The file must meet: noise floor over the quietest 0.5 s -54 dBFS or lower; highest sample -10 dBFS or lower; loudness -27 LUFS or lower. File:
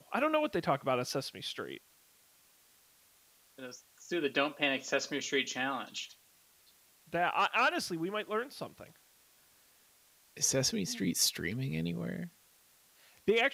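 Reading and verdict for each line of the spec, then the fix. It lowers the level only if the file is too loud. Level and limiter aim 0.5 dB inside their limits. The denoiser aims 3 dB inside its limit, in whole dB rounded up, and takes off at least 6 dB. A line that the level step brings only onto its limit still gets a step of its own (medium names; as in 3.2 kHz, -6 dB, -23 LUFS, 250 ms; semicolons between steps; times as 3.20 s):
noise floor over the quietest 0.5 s -65 dBFS: pass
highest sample -15.5 dBFS: pass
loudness -33.0 LUFS: pass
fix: none needed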